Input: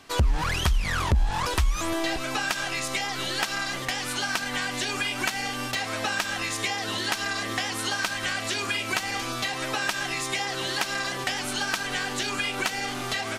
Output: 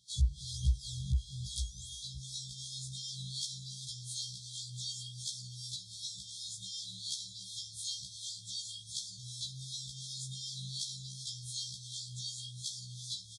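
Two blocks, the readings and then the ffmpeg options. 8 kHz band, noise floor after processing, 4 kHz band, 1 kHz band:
-8.0 dB, -51 dBFS, -10.0 dB, under -40 dB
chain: -filter_complex "[0:a]afftfilt=real='re*(1-between(b*sr/4096,190,3200))':imag='im*(1-between(b*sr/4096,190,3200))':win_size=4096:overlap=0.75,highpass=f=57:w=0.5412,highpass=f=57:w=1.3066,equalizer=f=900:t=o:w=1.7:g=-12.5,dynaudnorm=f=100:g=3:m=3dB,acrossover=split=1800[a][b];[a]aeval=exprs='val(0)*(1-0.7/2+0.7/2*cos(2*PI*2.7*n/s))':c=same[c];[b]aeval=exprs='val(0)*(1-0.7/2-0.7/2*cos(2*PI*2.7*n/s))':c=same[d];[c][d]amix=inputs=2:normalize=0,asplit=2[e][f];[f]adelay=345,lowpass=f=1.2k:p=1,volume=-24dB,asplit=2[g][h];[h]adelay=345,lowpass=f=1.2k:p=1,volume=0.43,asplit=2[i][j];[j]adelay=345,lowpass=f=1.2k:p=1,volume=0.43[k];[e][g][i][k]amix=inputs=4:normalize=0,aresample=22050,aresample=44100,afftfilt=real='re*1.73*eq(mod(b,3),0)':imag='im*1.73*eq(mod(b,3),0)':win_size=2048:overlap=0.75,volume=-4.5dB"

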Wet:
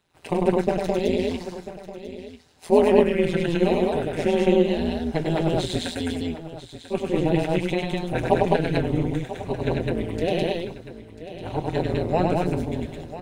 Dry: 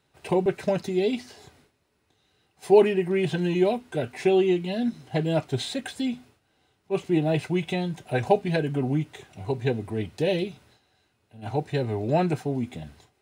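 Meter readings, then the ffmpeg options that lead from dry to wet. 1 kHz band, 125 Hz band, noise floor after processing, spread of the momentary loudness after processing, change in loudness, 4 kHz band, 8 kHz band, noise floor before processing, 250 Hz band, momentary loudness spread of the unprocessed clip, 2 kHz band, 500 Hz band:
+3.5 dB, +2.0 dB, -45 dBFS, 18 LU, +2.0 dB, +2.5 dB, +2.5 dB, -71 dBFS, +3.0 dB, 10 LU, +2.5 dB, +2.5 dB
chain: -filter_complex "[0:a]asplit=2[a][b];[b]aecho=0:1:99.13|209.9:0.708|0.891[c];[a][c]amix=inputs=2:normalize=0,tremolo=f=170:d=0.947,asplit=2[d][e];[e]aecho=0:1:993:0.2[f];[d][f]amix=inputs=2:normalize=0,volume=3dB"

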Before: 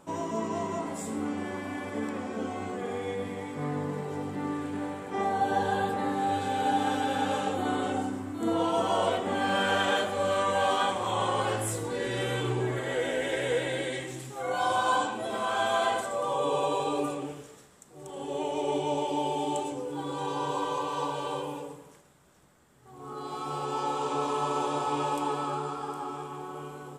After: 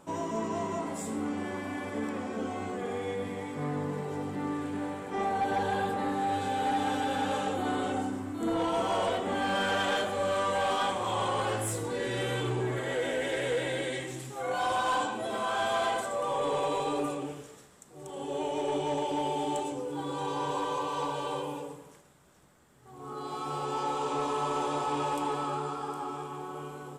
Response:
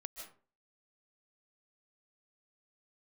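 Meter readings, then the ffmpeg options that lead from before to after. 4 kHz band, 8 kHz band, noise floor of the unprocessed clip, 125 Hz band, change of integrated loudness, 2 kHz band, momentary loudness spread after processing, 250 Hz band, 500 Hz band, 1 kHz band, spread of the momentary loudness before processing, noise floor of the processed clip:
-1.5 dB, -1.0 dB, -53 dBFS, -1.0 dB, -1.5 dB, -1.5 dB, 8 LU, -1.0 dB, -1.5 dB, -1.5 dB, 10 LU, -53 dBFS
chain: -af "asoftclip=type=tanh:threshold=-22.5dB"

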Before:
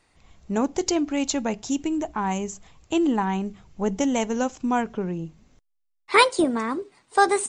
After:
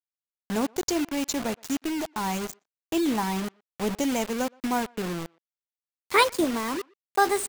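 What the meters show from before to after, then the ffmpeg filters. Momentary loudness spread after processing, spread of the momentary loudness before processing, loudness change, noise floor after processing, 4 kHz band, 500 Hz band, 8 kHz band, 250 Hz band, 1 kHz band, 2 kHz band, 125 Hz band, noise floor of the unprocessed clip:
9 LU, 11 LU, -3.0 dB, under -85 dBFS, -1.5 dB, -3.5 dB, -2.0 dB, -3.5 dB, -3.5 dB, -3.0 dB, -3.5 dB, -72 dBFS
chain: -filter_complex "[0:a]acrusher=bits=4:mix=0:aa=0.000001,asplit=2[a][b];[b]adelay=120,highpass=300,lowpass=3.4k,asoftclip=type=hard:threshold=-12.5dB,volume=-27dB[c];[a][c]amix=inputs=2:normalize=0,volume=-3.5dB"

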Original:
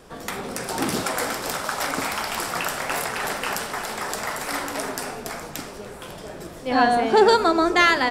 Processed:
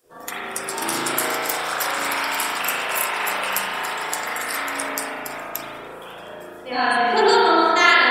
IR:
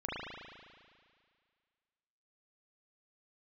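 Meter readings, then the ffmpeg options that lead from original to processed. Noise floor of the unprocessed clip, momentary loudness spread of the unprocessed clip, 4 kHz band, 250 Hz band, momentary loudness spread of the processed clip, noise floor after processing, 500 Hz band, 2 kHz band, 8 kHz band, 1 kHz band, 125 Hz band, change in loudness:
-39 dBFS, 17 LU, +3.5 dB, -3.0 dB, 18 LU, -38 dBFS, -0.5 dB, +4.0 dB, +3.0 dB, +2.5 dB, -7.5 dB, +2.0 dB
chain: -filter_complex "[1:a]atrim=start_sample=2205[a];[0:a][a]afir=irnorm=-1:irlink=0,afftdn=nr=16:nf=-40,aemphasis=mode=production:type=riaa,volume=-2.5dB"

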